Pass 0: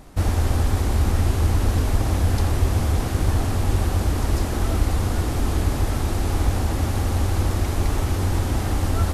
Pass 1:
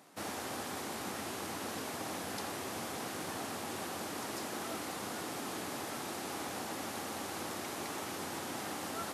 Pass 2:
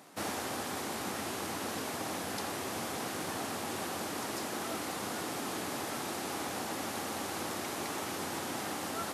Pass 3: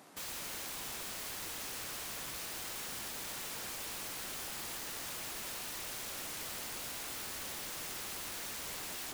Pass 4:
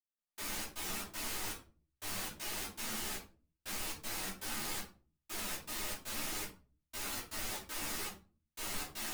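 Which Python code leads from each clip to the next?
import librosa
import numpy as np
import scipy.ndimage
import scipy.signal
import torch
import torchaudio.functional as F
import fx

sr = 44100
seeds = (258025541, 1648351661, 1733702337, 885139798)

y1 = scipy.signal.sosfilt(scipy.signal.butter(4, 160.0, 'highpass', fs=sr, output='sos'), x)
y1 = fx.low_shelf(y1, sr, hz=410.0, db=-10.0)
y1 = F.gain(torch.from_numpy(y1), -7.5).numpy()
y2 = fx.rider(y1, sr, range_db=10, speed_s=0.5)
y2 = F.gain(torch.from_numpy(y2), 3.0).numpy()
y3 = (np.mod(10.0 ** (35.5 / 20.0) * y2 + 1.0, 2.0) - 1.0) / 10.0 ** (35.5 / 20.0)
y3 = F.gain(torch.from_numpy(y3), -2.0).numpy()
y4 = fx.step_gate(y3, sr, bpm=119, pattern='...xx.xx.xxx.', floor_db=-60.0, edge_ms=4.5)
y4 = fx.room_shoebox(y4, sr, seeds[0], volume_m3=200.0, walls='furnished', distance_m=2.7)
y4 = fx.ensemble(y4, sr)
y4 = F.gain(torch.from_numpy(y4), 1.0).numpy()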